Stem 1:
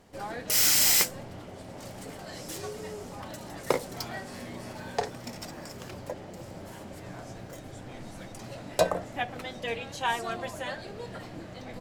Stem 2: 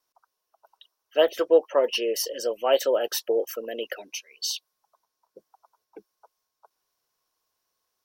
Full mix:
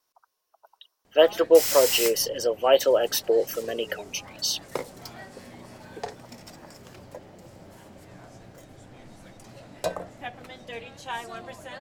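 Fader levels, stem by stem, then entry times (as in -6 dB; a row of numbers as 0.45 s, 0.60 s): -5.0 dB, +2.5 dB; 1.05 s, 0.00 s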